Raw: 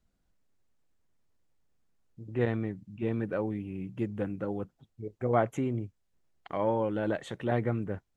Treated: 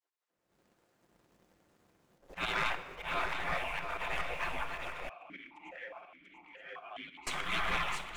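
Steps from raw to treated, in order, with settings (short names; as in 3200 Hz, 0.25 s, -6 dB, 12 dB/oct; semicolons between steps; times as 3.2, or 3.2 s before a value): reverse delay 0.51 s, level -5.5 dB; spectral gate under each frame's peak -30 dB weak; high shelf 2300 Hz -10 dB; auto swell 0.164 s; sample leveller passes 2; AGC gain up to 16 dB; swung echo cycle 0.918 s, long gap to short 3:1, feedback 45%, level -8 dB; shoebox room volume 3300 m³, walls mixed, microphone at 0.84 m; 5.09–7.27 vowel sequencer 4.8 Hz; gain +2.5 dB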